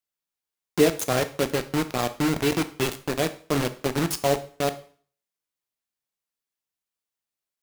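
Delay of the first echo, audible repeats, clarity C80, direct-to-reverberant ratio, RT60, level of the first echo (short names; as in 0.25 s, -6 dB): none, none, 19.0 dB, 10.0 dB, 0.45 s, none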